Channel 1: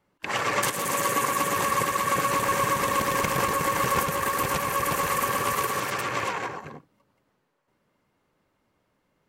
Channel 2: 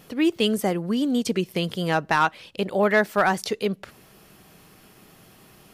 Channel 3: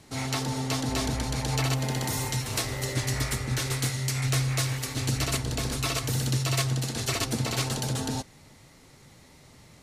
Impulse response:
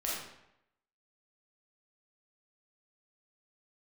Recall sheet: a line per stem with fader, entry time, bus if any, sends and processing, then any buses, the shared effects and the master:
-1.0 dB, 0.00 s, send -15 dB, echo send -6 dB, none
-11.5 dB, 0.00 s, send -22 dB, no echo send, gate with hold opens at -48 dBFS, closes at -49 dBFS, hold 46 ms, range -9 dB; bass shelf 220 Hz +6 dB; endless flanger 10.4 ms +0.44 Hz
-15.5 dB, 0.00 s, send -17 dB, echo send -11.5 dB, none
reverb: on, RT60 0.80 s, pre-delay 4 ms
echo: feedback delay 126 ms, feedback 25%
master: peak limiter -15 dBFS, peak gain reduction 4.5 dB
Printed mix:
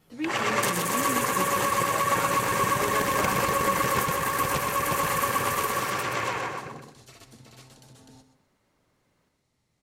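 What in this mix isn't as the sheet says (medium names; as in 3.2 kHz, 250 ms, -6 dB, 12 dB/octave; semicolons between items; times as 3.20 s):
stem 1: send off; stem 3 -15.5 dB -> -23.0 dB; master: missing peak limiter -15 dBFS, peak gain reduction 4.5 dB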